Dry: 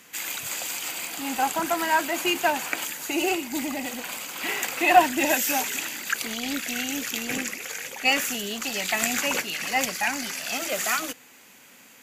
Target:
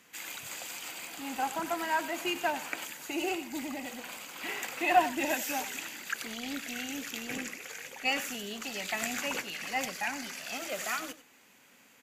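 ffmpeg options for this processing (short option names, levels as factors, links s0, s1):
-filter_complex "[0:a]highshelf=f=5500:g=-5,asplit=2[s0][s1];[s1]aecho=0:1:93:0.178[s2];[s0][s2]amix=inputs=2:normalize=0,volume=0.422"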